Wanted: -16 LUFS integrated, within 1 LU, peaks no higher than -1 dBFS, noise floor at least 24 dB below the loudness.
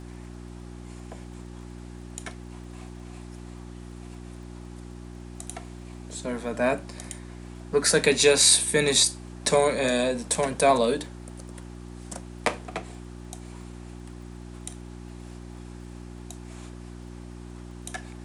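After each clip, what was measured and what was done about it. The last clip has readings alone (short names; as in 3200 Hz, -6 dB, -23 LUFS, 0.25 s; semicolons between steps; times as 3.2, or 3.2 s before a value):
ticks 24/s; hum 60 Hz; harmonics up to 360 Hz; hum level -38 dBFS; loudness -22.5 LUFS; peak -5.5 dBFS; loudness target -16.0 LUFS
-> de-click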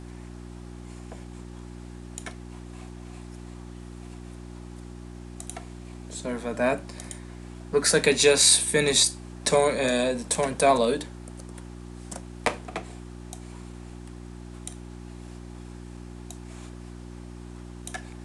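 ticks 0/s; hum 60 Hz; harmonics up to 360 Hz; hum level -38 dBFS
-> de-hum 60 Hz, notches 6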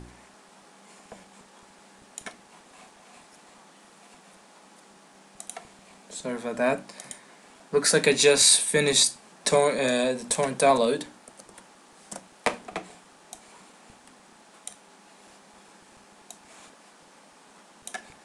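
hum none; loudness -22.5 LUFS; peak -5.5 dBFS; loudness target -16.0 LUFS
-> gain +6.5 dB; limiter -1 dBFS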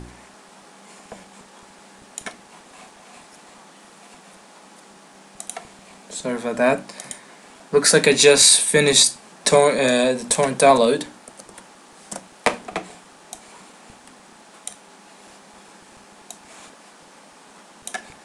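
loudness -16.5 LUFS; peak -1.0 dBFS; noise floor -48 dBFS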